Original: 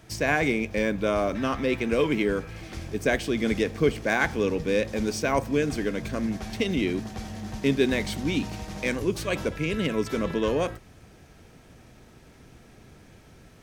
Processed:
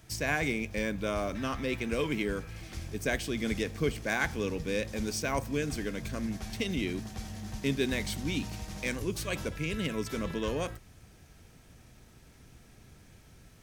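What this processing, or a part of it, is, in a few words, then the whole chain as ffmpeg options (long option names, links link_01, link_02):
smiley-face EQ: -af "lowshelf=frequency=150:gain=4.5,equalizer=frequency=420:width_type=o:width=2.3:gain=-3.5,highshelf=frequency=5500:gain=7.5,volume=-5.5dB"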